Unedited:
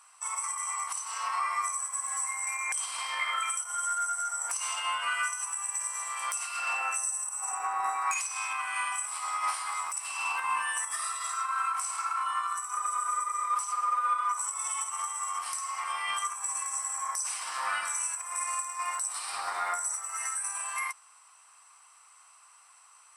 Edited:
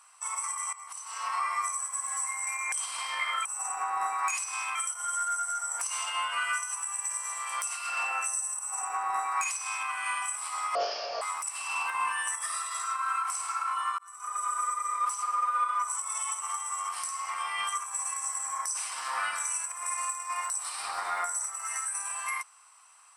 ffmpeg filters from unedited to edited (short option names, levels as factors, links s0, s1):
-filter_complex "[0:a]asplit=7[s0][s1][s2][s3][s4][s5][s6];[s0]atrim=end=0.73,asetpts=PTS-STARTPTS,afade=t=out:st=0.726:d=0.004:c=hsin:silence=0.149624[s7];[s1]atrim=start=0.73:end=3.452,asetpts=PTS-STARTPTS,afade=t=in:d=0.59:silence=0.149624[s8];[s2]atrim=start=7.278:end=8.582[s9];[s3]atrim=start=3.448:end=9.454[s10];[s4]atrim=start=9.45:end=9.71,asetpts=PTS-STARTPTS,asetrate=24696,aresample=44100[s11];[s5]atrim=start=9.706:end=12.48,asetpts=PTS-STARTPTS,afade=t=out:st=2.77:d=0.004:c=hsin[s12];[s6]atrim=start=12.48,asetpts=PTS-STARTPTS,afade=t=in:d=0.47[s13];[s7][s8]concat=n=2:v=0:a=1[s14];[s14][s9]acrossfade=d=0.004:c1=hsin:c2=hsin[s15];[s15][s10]acrossfade=d=0.004:c1=hsin:c2=hsin[s16];[s16][s11]acrossfade=d=0.004:c1=hsin:c2=hsin[s17];[s12][s13]concat=n=2:v=0:a=1[s18];[s17][s18]acrossfade=d=0.004:c1=hsin:c2=hsin"